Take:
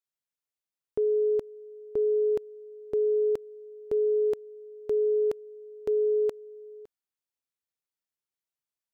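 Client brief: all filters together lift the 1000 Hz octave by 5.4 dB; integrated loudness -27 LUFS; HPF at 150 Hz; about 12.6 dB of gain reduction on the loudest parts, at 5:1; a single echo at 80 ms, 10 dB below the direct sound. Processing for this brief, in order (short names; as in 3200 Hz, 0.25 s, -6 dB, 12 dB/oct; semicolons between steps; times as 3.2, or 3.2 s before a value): HPF 150 Hz; bell 1000 Hz +7 dB; compressor 5:1, threshold -37 dBFS; echo 80 ms -10 dB; gain +11 dB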